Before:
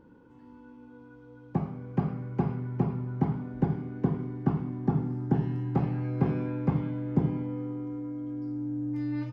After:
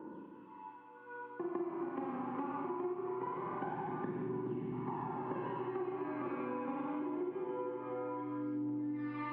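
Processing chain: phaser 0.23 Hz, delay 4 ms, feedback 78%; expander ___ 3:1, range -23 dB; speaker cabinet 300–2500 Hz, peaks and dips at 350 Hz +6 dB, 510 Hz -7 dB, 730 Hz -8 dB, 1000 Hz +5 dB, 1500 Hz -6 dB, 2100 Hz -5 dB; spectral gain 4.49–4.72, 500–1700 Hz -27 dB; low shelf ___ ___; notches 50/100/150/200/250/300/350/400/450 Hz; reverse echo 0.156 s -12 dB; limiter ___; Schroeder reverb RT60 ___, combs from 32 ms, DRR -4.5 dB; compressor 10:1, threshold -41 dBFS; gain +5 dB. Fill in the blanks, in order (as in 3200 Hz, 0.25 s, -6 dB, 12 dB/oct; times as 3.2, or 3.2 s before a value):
-45 dBFS, 440 Hz, -7.5 dB, -26 dBFS, 1.8 s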